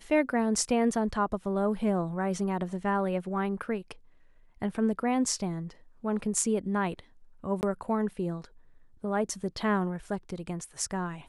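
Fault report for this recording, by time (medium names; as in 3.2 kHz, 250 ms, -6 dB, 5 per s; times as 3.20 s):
7.61–7.63 s: dropout 19 ms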